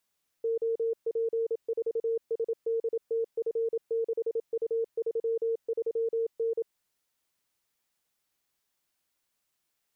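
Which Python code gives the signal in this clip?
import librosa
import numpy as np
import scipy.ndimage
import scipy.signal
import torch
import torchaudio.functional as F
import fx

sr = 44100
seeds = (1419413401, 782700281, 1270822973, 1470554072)

y = fx.morse(sr, text='OP4SDTF6U33N', wpm=27, hz=456.0, level_db=-25.5)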